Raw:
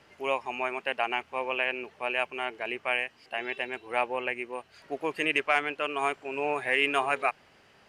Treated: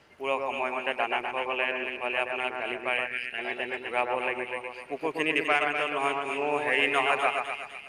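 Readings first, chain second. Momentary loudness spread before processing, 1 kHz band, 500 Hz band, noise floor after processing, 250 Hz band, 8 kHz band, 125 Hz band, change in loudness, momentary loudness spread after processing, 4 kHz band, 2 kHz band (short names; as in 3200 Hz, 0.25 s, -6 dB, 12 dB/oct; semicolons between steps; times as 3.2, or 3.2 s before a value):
9 LU, +1.5 dB, +1.5 dB, -45 dBFS, +2.0 dB, +1.5 dB, +2.5 dB, +1.5 dB, 8 LU, +1.5 dB, +1.5 dB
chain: split-band echo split 2000 Hz, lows 0.122 s, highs 0.252 s, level -4 dB; spectral gain 3.07–3.38, 490–1300 Hz -14 dB; Opus 48 kbps 48000 Hz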